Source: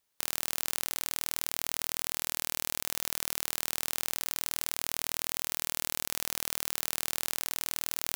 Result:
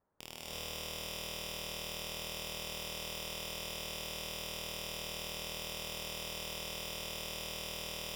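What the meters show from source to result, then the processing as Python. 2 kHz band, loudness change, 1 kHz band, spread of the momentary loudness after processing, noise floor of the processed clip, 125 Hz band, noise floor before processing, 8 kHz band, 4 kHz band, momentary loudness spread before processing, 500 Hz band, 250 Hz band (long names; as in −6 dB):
−4.5 dB, −8.0 dB, −5.0 dB, 0 LU, −47 dBFS, +2.0 dB, −79 dBFS, −11.0 dB, −2.0 dB, 0 LU, +2.0 dB, −1.0 dB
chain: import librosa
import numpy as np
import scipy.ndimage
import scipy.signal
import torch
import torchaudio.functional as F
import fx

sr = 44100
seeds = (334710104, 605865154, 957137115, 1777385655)

p1 = scipy.signal.sosfilt(scipy.signal.bessel(6, 900.0, 'lowpass', norm='mag', fs=sr, output='sos'), x)
p2 = (np.mod(10.0 ** (38.5 / 20.0) * p1 + 1.0, 2.0) - 1.0) / 10.0 ** (38.5 / 20.0)
p3 = fx.cheby_harmonics(p2, sr, harmonics=(6,), levels_db=(-23,), full_scale_db=-38.5)
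p4 = p3 + fx.echo_single(p3, sr, ms=549, db=-11.0, dry=0)
p5 = fx.rev_gated(p4, sr, seeds[0], gate_ms=370, shape='rising', drr_db=-5.5)
y = F.gain(torch.from_numpy(p5), 9.0).numpy()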